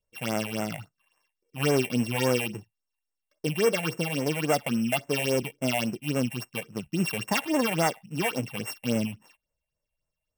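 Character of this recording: a buzz of ramps at a fixed pitch in blocks of 16 samples; phasing stages 6, 3.6 Hz, lowest notch 320–4400 Hz

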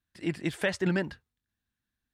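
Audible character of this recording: noise floor -87 dBFS; spectral tilt -5.0 dB/octave

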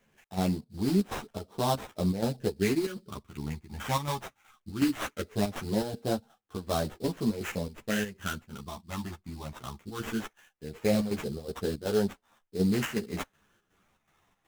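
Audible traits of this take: phasing stages 12, 0.19 Hz, lowest notch 460–2300 Hz; aliases and images of a low sample rate 4.6 kHz, jitter 20%; chopped level 2.7 Hz, depth 60%, duty 70%; a shimmering, thickened sound

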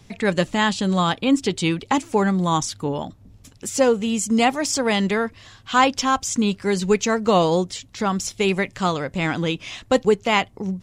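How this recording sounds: noise floor -50 dBFS; spectral tilt -4.5 dB/octave

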